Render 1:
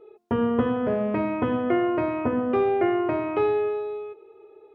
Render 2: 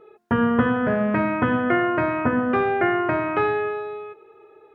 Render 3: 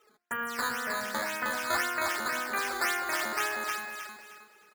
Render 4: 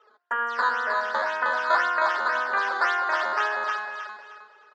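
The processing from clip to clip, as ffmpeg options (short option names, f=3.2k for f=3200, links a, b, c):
-af "equalizer=f=160:t=o:w=0.67:g=6,equalizer=f=400:t=o:w=0.67:g=-5,equalizer=f=1.6k:t=o:w=0.67:g=11,volume=3dB"
-filter_complex "[0:a]bandpass=f=2k:t=q:w=1.8:csg=0,acrusher=samples=9:mix=1:aa=0.000001:lfo=1:lforange=14.4:lforate=1.9,asplit=2[a][b];[b]aecho=0:1:312|624|936|1248:0.668|0.194|0.0562|0.0163[c];[a][c]amix=inputs=2:normalize=0,volume=-2dB"
-af "highpass=f=330:w=0.5412,highpass=f=330:w=1.3066,equalizer=f=340:t=q:w=4:g=-7,equalizer=f=590:t=q:w=4:g=4,equalizer=f=1k:t=q:w=4:g=8,equalizer=f=1.5k:t=q:w=4:g=5,equalizer=f=2.3k:t=q:w=4:g=-10,equalizer=f=4.1k:t=q:w=4:g=-3,lowpass=f=4.4k:w=0.5412,lowpass=f=4.4k:w=1.3066,volume=4dB"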